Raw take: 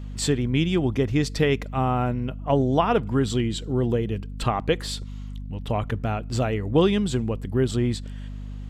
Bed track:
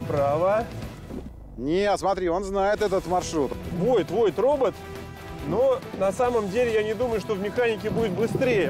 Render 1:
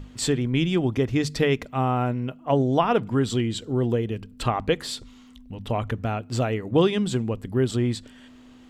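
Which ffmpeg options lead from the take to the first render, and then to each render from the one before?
-af "bandreject=f=50:t=h:w=6,bandreject=f=100:t=h:w=6,bandreject=f=150:t=h:w=6,bandreject=f=200:t=h:w=6"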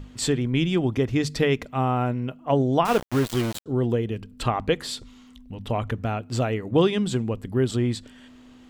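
-filter_complex "[0:a]asettb=1/sr,asplit=3[a][b][c];[a]atrim=end=2.854[d];[b]atrim=start=2.85:end=3.66,asetpts=PTS-STARTPTS,afade=t=in:d=0.004:c=qsin,afade=t=out:st=0.806:d=0.004:c=qsin,aeval=exprs='val(0)*gte(abs(val(0)),0.0531)':c=same[e];[c]atrim=start=3.656[f];[d][e]acrossfade=d=0.004:c1=hsin:c2=qsin[g];[g][f]acrossfade=d=0.004:c1=qsin:c2=hsin"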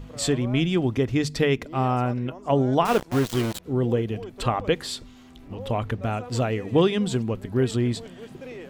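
-filter_complex "[1:a]volume=-17.5dB[a];[0:a][a]amix=inputs=2:normalize=0"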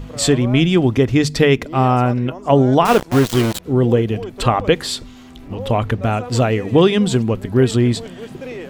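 -af "volume=8.5dB,alimiter=limit=-2dB:level=0:latency=1"

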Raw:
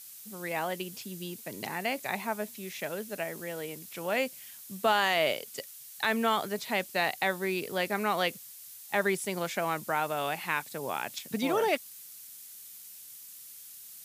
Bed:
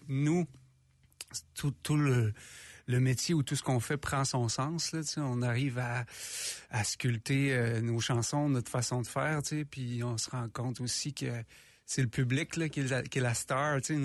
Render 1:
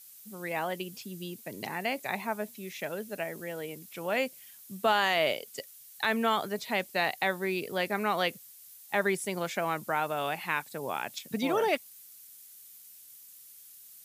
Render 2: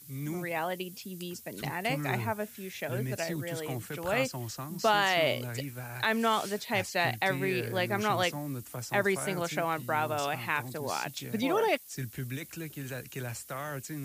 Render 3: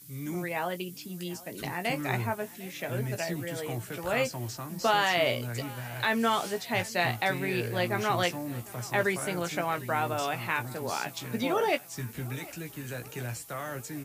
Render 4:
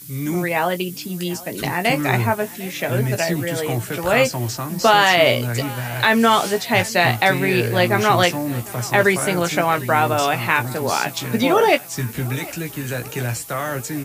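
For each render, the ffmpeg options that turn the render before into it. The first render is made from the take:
-af "afftdn=nr=6:nf=-48"
-filter_complex "[1:a]volume=-7dB[a];[0:a][a]amix=inputs=2:normalize=0"
-filter_complex "[0:a]asplit=2[a][b];[b]adelay=17,volume=-7.5dB[c];[a][c]amix=inputs=2:normalize=0,aecho=1:1:752|1504|2256|3008|3760:0.0944|0.0557|0.0329|0.0194|0.0114"
-af "volume=12dB,alimiter=limit=-2dB:level=0:latency=1"

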